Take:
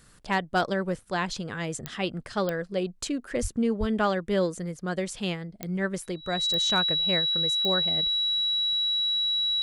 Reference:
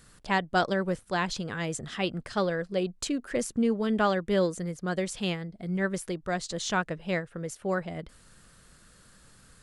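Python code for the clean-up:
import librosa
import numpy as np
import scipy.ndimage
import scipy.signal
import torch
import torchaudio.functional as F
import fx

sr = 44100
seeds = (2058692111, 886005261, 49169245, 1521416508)

y = fx.fix_declip(x, sr, threshold_db=-14.5)
y = fx.fix_declick_ar(y, sr, threshold=10.0)
y = fx.notch(y, sr, hz=3900.0, q=30.0)
y = fx.fix_deplosive(y, sr, at_s=(3.41, 3.79))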